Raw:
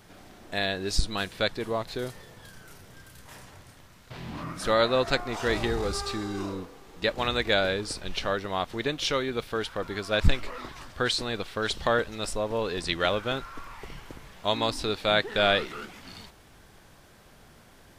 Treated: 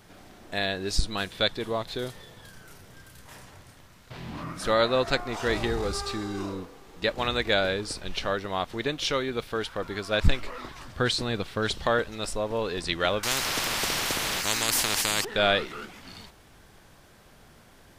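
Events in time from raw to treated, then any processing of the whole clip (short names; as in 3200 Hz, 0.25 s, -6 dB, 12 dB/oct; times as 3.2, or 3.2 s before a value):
1.3–2.41 bell 3500 Hz +7.5 dB 0.22 oct
10.85–11.75 bell 130 Hz +6.5 dB 2.2 oct
13.23–15.25 spectral compressor 10:1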